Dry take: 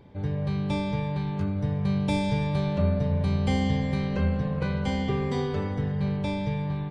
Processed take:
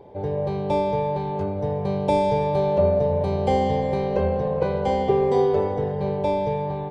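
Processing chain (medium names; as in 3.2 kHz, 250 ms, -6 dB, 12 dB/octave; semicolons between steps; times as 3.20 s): high-order bell 580 Hz +14.5 dB; trim -2 dB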